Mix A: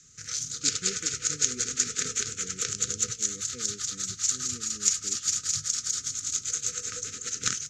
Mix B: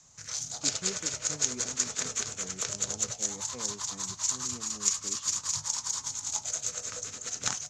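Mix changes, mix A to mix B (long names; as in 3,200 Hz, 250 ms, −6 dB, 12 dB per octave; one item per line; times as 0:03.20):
background −3.0 dB
master: remove linear-phase brick-wall band-stop 510–1,200 Hz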